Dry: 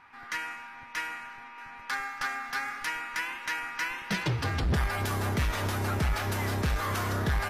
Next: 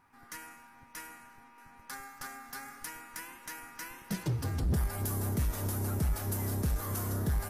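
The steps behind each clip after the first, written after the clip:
drawn EQ curve 250 Hz 0 dB, 2,400 Hz −14 dB, 3,700 Hz −11 dB, 11,000 Hz +8 dB
level −2 dB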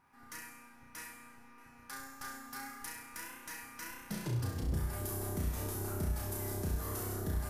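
downward compressor 3 to 1, threshold −32 dBFS, peak gain reduction 4.5 dB
on a send: flutter between parallel walls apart 5.7 metres, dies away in 0.63 s
on the sum: level −4 dB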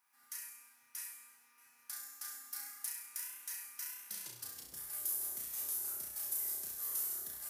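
first difference
level +3.5 dB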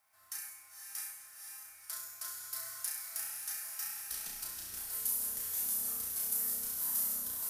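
frequency shifter −150 Hz
feedback delay with all-pass diffusion 513 ms, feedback 46%, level −5 dB
level +3 dB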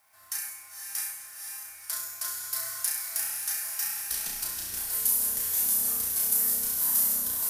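notch filter 1,300 Hz, Q 23
level +9 dB

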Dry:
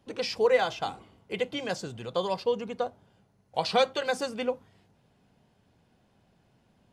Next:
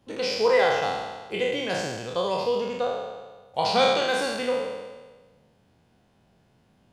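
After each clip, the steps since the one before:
peak hold with a decay on every bin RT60 1.35 s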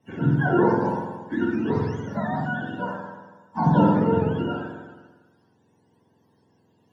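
frequency axis turned over on the octave scale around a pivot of 840 Hz
convolution reverb RT60 0.50 s, pre-delay 3 ms, DRR 21 dB
level −6 dB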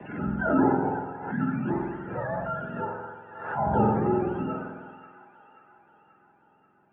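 delay with a high-pass on its return 534 ms, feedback 57%, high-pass 1,600 Hz, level −10 dB
single-sideband voice off tune −86 Hz 250–2,500 Hz
background raised ahead of every attack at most 69 dB per second
level −2 dB

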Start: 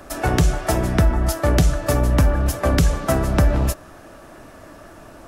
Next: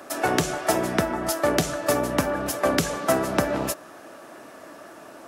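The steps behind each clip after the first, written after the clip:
high-pass filter 260 Hz 12 dB per octave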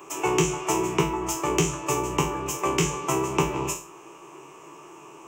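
peak hold with a decay on every bin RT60 0.37 s
EQ curve with evenly spaced ripples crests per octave 0.72, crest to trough 18 dB
level −5.5 dB

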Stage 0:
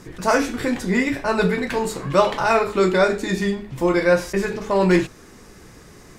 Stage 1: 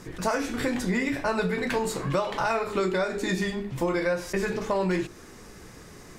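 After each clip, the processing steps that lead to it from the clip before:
mains-hum notches 50/100/150/200/250/300/350/400 Hz
downward compressor 12 to 1, threshold −21 dBFS, peak gain reduction 11.5 dB
level −1 dB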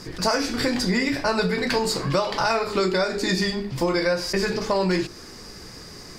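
parametric band 4,800 Hz +15 dB 0.36 octaves
level +3.5 dB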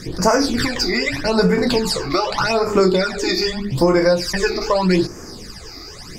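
all-pass phaser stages 12, 0.82 Hz, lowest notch 160–3,900 Hz
level +7.5 dB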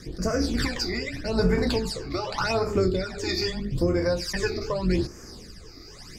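sub-octave generator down 2 octaves, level −2 dB
rotating-speaker cabinet horn 1.1 Hz
level −7 dB

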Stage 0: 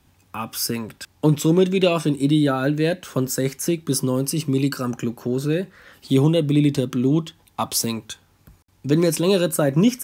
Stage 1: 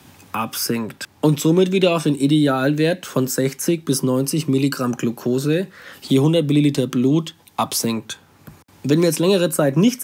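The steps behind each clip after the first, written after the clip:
high-pass filter 120 Hz
multiband upward and downward compressor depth 40%
level +2.5 dB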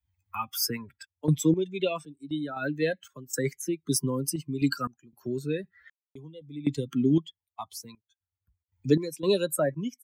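spectral dynamics exaggerated over time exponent 2
sample-and-hold tremolo 3.9 Hz, depth 100%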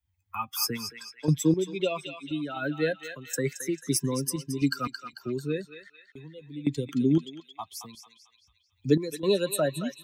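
feedback echo with a band-pass in the loop 222 ms, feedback 57%, band-pass 2,800 Hz, level −5 dB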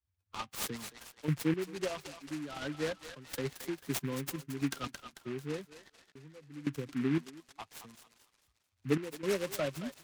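short delay modulated by noise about 1,700 Hz, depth 0.087 ms
level −8 dB

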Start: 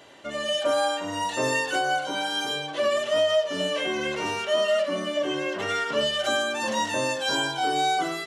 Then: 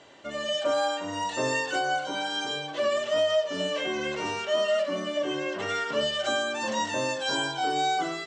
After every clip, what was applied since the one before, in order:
Chebyshev low-pass filter 8,100 Hz, order 5
level −2 dB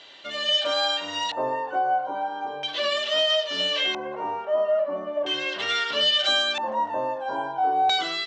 spectral tilt +3 dB per octave
floating-point word with a short mantissa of 4 bits
auto-filter low-pass square 0.38 Hz 850–3,800 Hz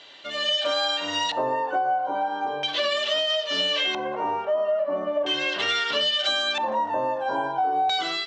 automatic gain control gain up to 4 dB
convolution reverb RT60 0.75 s, pre-delay 7 ms, DRR 17 dB
downward compressor, threshold −21 dBFS, peak gain reduction 7.5 dB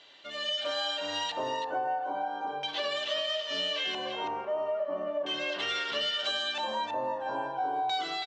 single-tap delay 328 ms −7.5 dB
level −8 dB

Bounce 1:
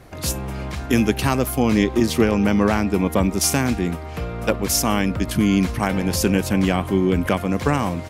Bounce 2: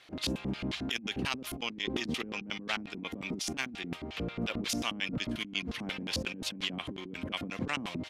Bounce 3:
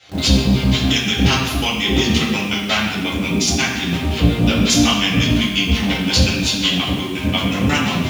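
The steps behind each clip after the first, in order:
auto-filter band-pass square 5.6 Hz 250–3,300 Hz; compressor whose output falls as the input rises −35 dBFS, ratio −1; level −2 dB
convolution reverb RT60 1.1 s, pre-delay 3 ms, DRR −8.5 dB; in parallel at −4.5 dB: bit-depth reduction 6 bits, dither none; on the sum: level +1.5 dB

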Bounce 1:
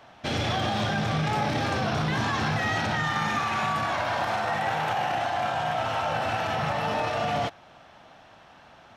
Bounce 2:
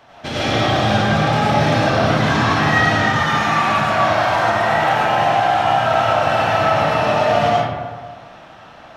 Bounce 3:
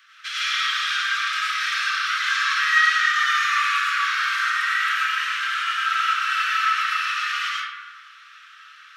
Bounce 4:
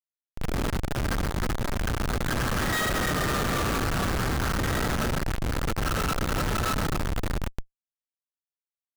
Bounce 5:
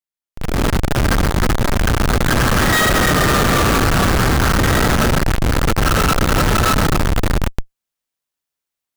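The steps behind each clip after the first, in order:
comb and all-pass reverb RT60 1.5 s, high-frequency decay 0.45×, pre-delay 65 ms, DRR −7.5 dB; level +2.5 dB
Butterworth high-pass 1,200 Hz 96 dB per octave
phase distortion by the signal itself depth 0.15 ms; high-frequency loss of the air 160 metres; comparator with hysteresis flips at −20 dBFS
automatic gain control gain up to 12 dB

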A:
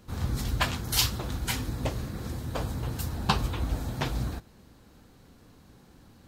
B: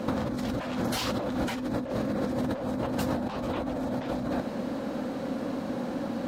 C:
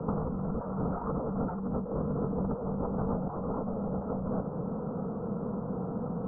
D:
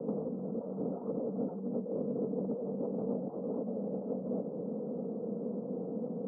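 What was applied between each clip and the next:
hollow resonant body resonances 250/540 Hz, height 16 dB, ringing for 30 ms; mid-hump overdrive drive 24 dB, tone 1,800 Hz, clips at −4 dBFS; compressor whose output falls as the input rises −26 dBFS, ratio −1; level −4 dB
Chebyshev low-pass filter 1,400 Hz, order 6; frequency shifter −60 Hz; level −1.5 dB
Chebyshev band-pass filter 230–550 Hz, order 2

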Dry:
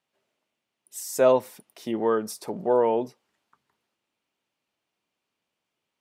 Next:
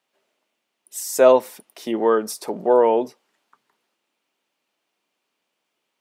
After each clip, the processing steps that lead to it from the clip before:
high-pass filter 240 Hz 12 dB per octave
level +6 dB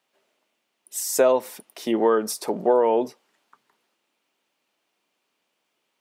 downward compressor 6 to 1, threshold −16 dBFS, peak gain reduction 8 dB
level +1.5 dB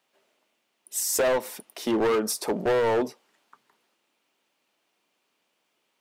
gain into a clipping stage and back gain 21 dB
level +1 dB

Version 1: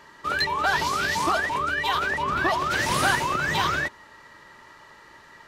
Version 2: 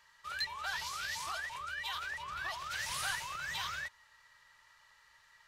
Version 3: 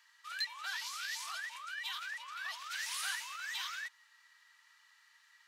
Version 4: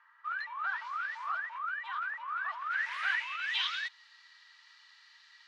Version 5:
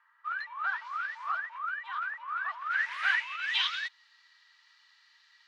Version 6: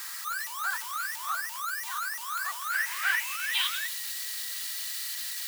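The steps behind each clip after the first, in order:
guitar amp tone stack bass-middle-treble 10-0-10; level −8.5 dB
high-pass filter 1,400 Hz 12 dB per octave
low-pass filter sweep 1,300 Hz → 4,400 Hz, 0:02.56–0:04.00; level +3.5 dB
expander for the loud parts 1.5 to 1, over −46 dBFS; level +5 dB
spike at every zero crossing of −26.5 dBFS

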